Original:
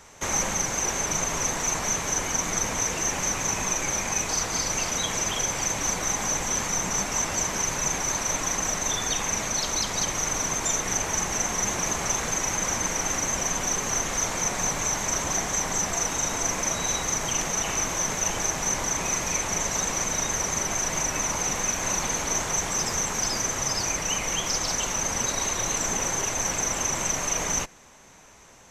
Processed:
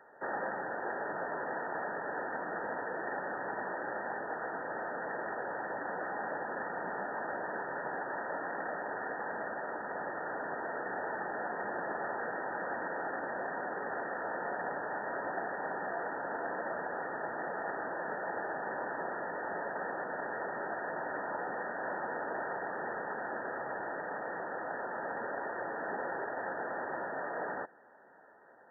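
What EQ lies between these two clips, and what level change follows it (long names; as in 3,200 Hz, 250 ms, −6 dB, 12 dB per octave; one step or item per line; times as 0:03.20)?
high-pass filter 410 Hz 12 dB per octave
linear-phase brick-wall low-pass 1,900 Hz
parametric band 1,100 Hz −14.5 dB 0.23 octaves
−1.5 dB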